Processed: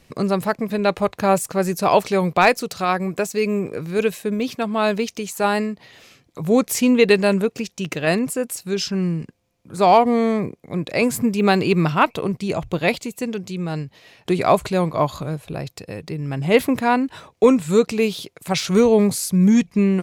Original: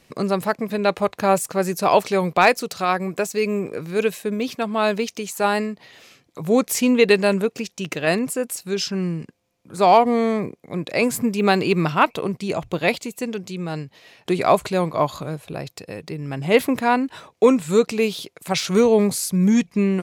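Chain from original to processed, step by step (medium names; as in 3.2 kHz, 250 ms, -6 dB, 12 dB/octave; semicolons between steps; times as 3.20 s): bass shelf 110 Hz +10.5 dB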